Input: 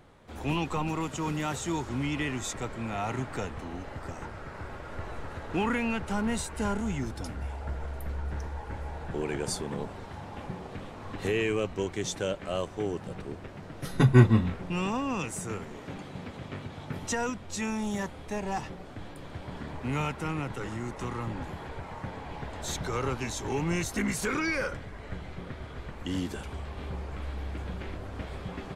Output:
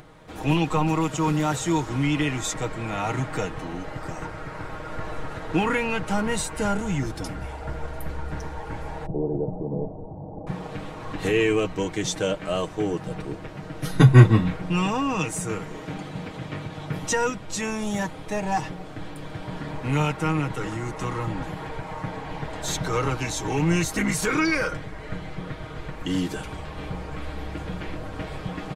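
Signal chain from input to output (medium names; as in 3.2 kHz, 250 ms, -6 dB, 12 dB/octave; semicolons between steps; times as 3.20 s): 9.06–10.47 s: steep low-pass 760 Hz 36 dB/octave; comb 6.4 ms, depth 59%; upward compressor, threshold -50 dBFS; trim +5 dB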